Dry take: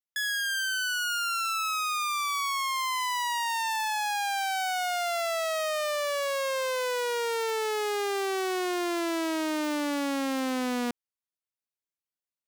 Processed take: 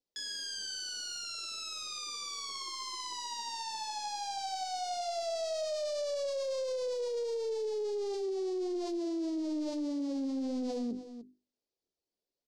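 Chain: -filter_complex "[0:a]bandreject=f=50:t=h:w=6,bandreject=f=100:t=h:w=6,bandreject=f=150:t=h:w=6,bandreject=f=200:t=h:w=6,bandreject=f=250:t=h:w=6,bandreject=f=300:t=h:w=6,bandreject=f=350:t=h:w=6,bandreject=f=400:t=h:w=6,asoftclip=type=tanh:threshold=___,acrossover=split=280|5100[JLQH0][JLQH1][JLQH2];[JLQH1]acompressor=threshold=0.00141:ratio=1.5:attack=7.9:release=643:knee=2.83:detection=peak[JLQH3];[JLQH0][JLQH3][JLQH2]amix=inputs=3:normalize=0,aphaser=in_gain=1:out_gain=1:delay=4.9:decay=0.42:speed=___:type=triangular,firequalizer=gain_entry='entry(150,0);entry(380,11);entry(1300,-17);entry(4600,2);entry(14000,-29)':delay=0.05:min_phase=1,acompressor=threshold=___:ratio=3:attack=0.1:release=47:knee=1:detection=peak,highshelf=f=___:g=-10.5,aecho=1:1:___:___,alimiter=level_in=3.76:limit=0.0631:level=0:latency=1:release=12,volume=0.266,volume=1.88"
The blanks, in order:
0.0631, 1.6, 0.0224, 9.3k, 303, 0.141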